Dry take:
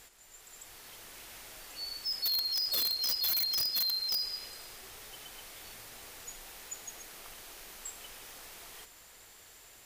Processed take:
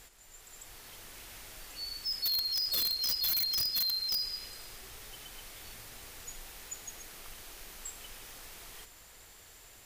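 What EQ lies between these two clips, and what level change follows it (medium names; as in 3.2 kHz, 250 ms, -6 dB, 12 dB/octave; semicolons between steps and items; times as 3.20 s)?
bass shelf 130 Hz +8 dB; dynamic bell 670 Hz, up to -4 dB, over -56 dBFS, Q 0.91; 0.0 dB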